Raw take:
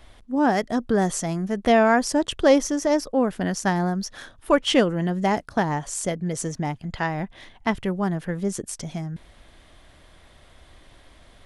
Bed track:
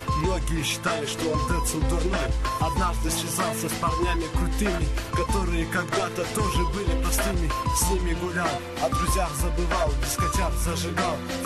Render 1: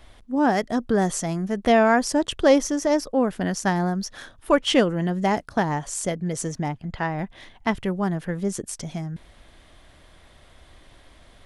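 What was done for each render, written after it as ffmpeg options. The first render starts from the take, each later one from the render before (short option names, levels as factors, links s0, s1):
-filter_complex "[0:a]asettb=1/sr,asplit=3[s0][s1][s2];[s0]atrim=end=6.684[s3];[s1]atrim=start=6.68:end=7.19,asetpts=PTS-STARTPTS,afade=t=in:d=0.004:c=qsin,afade=t=out:st=0.506:d=0.004:c=qsin,highshelf=f=3700:g=-9[s4];[s2]atrim=start=7.186[s5];[s3][s4]acrossfade=d=0.004:c1=hsin:c2=qsin[s6];[s6][s5]acrossfade=d=0.004:c1=qsin:c2=hsin"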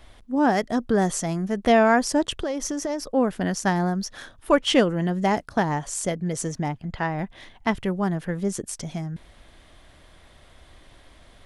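-filter_complex "[0:a]asettb=1/sr,asplit=3[s0][s1][s2];[s0]atrim=end=2.384[s3];[s1]atrim=start=2.38:end=3.01,asetpts=PTS-STARTPTS,afade=t=in:d=0.004:c=qsin,afade=t=out:st=0.626:d=0.004:c=qsin,acompressor=threshold=0.0708:ratio=16:attack=3.2:release=140:knee=1:detection=peak[s4];[s2]atrim=start=3.006[s5];[s3][s4]acrossfade=d=0.004:c1=hsin:c2=qsin[s6];[s6][s5]acrossfade=d=0.004:c1=qsin:c2=hsin"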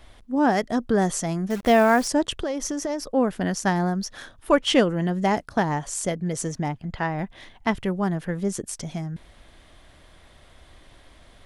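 -filter_complex "[0:a]asettb=1/sr,asplit=3[s0][s1][s2];[s0]atrim=end=1.504[s3];[s1]atrim=start=1.5:end=2.08,asetpts=PTS-STARTPTS,afade=t=in:d=0.004:c=qsin,afade=t=out:st=0.576:d=0.004:c=qsin,acrusher=bits=7:dc=4:mix=0:aa=0.000001[s4];[s2]atrim=start=2.076[s5];[s3][s4]acrossfade=d=0.004:c1=hsin:c2=qsin[s6];[s6][s5]acrossfade=d=0.004:c1=qsin:c2=hsin"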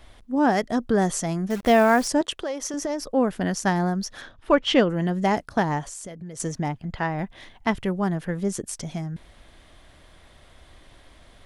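-filter_complex "[0:a]asettb=1/sr,asplit=3[s0][s1][s2];[s0]atrim=end=2.214[s3];[s1]atrim=start=2.21:end=2.74,asetpts=PTS-STARTPTS,afade=t=in:d=0.004:c=qsin,afade=t=out:st=0.526:d=0.004:c=qsin,bass=f=250:g=-14,treble=f=4000:g=-1[s4];[s2]atrim=start=2.736[s5];[s3][s4]acrossfade=d=0.004:c1=hsin:c2=qsin[s6];[s6][s5]acrossfade=d=0.004:c1=qsin:c2=hsin,asettb=1/sr,asplit=3[s7][s8][s9];[s7]atrim=end=4.214[s10];[s8]atrim=start=4.21:end=4.9,asetpts=PTS-STARTPTS,afade=t=in:d=0.004:c=qsin,afade=t=out:st=0.686:d=0.004:c=qsin,lowpass=4800[s11];[s9]atrim=start=4.896[s12];[s10][s11]acrossfade=d=0.004:c1=hsin:c2=qsin[s13];[s13][s12]acrossfade=d=0.004:c1=qsin:c2=hsin,asettb=1/sr,asplit=3[s14][s15][s16];[s14]atrim=end=5.854[s17];[s15]atrim=start=5.85:end=6.4,asetpts=PTS-STARTPTS,afade=t=in:d=0.004:c=qsin,afade=t=out:st=0.546:d=0.004:c=qsin,acompressor=threshold=0.0178:ratio=5:attack=3.2:release=140:knee=1:detection=peak[s18];[s16]atrim=start=6.396[s19];[s17][s18]acrossfade=d=0.004:c1=hsin:c2=qsin[s20];[s20][s19]acrossfade=d=0.004:c1=qsin:c2=hsin"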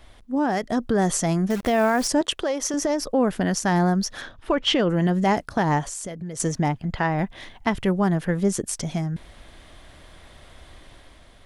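-af "alimiter=limit=0.15:level=0:latency=1:release=63,dynaudnorm=f=280:g=5:m=1.68"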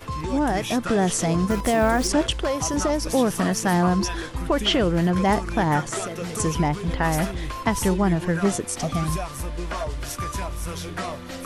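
-filter_complex "[1:a]volume=0.562[s0];[0:a][s0]amix=inputs=2:normalize=0"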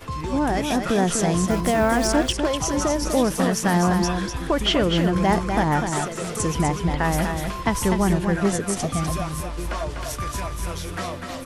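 -af "aecho=1:1:248:0.501"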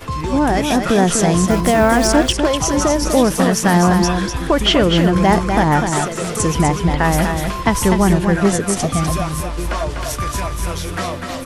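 -af "volume=2.11,alimiter=limit=0.794:level=0:latency=1"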